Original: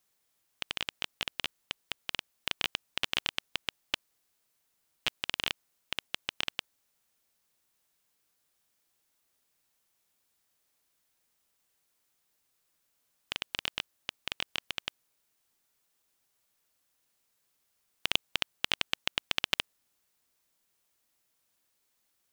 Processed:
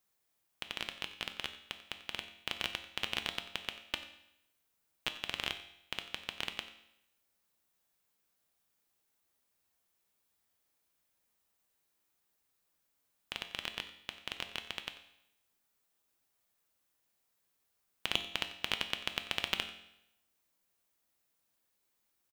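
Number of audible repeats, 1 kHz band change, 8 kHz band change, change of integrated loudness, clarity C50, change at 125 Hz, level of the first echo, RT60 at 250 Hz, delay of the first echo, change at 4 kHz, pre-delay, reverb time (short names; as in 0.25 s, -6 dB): 1, -2.5 dB, -5.0 dB, -4.0 dB, 10.0 dB, -2.0 dB, -16.5 dB, 0.80 s, 91 ms, -4.5 dB, 5 ms, 0.80 s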